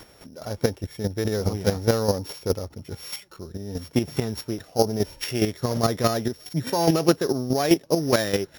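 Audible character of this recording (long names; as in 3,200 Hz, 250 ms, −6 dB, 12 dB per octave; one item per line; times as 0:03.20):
a buzz of ramps at a fixed pitch in blocks of 8 samples
chopped level 4.8 Hz, depth 60%, duty 15%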